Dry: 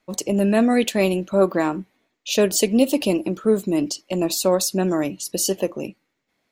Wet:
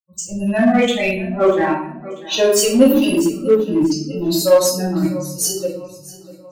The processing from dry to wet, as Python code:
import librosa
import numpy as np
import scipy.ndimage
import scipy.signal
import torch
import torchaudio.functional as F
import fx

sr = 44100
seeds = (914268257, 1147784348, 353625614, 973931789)

p1 = fx.bin_expand(x, sr, power=3.0)
p2 = fx.echo_feedback(p1, sr, ms=642, feedback_pct=44, wet_db=-19)
p3 = fx.room_shoebox(p2, sr, seeds[0], volume_m3=140.0, walls='mixed', distance_m=2.2)
p4 = np.clip(10.0 ** (16.5 / 20.0) * p3, -1.0, 1.0) / 10.0 ** (16.5 / 20.0)
p5 = p3 + (p4 * librosa.db_to_amplitude(-4.0))
p6 = fx.high_shelf(p5, sr, hz=5700.0, db=8.5, at=(2.85, 3.51))
y = p6 * librosa.db_to_amplitude(-1.5)